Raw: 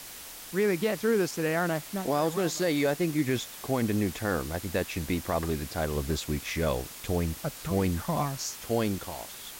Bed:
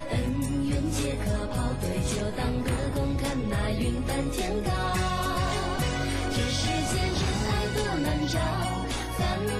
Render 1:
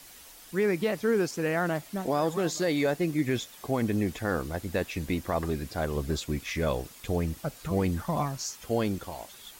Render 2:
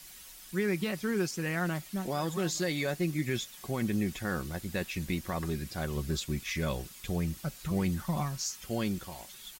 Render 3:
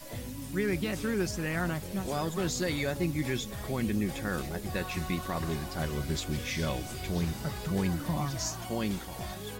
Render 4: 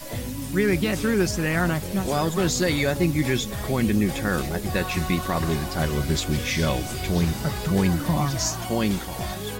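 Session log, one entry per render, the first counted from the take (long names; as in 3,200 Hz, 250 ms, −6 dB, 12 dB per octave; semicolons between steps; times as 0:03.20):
broadband denoise 8 dB, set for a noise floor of −44 dBFS
parametric band 580 Hz −8.5 dB 2.3 octaves; comb filter 5.4 ms, depth 38%
mix in bed −12.5 dB
level +8.5 dB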